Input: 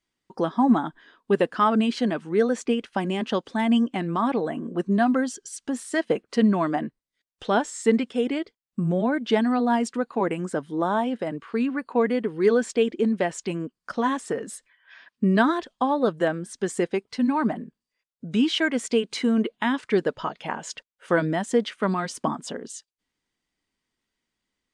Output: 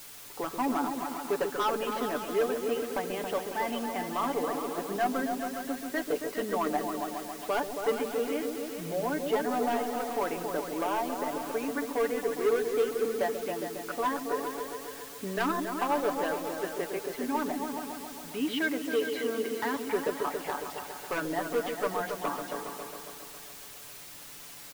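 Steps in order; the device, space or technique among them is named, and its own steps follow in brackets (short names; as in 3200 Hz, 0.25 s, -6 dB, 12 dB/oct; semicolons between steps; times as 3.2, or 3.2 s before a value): aircraft radio (BPF 390–2300 Hz; hard clip -20 dBFS, distortion -12 dB; white noise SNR 13 dB); 18.31–19.75 HPF 92 Hz; comb 6.9 ms, depth 56%; repeats that get brighter 0.137 s, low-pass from 400 Hz, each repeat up 2 oct, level -3 dB; gain -5 dB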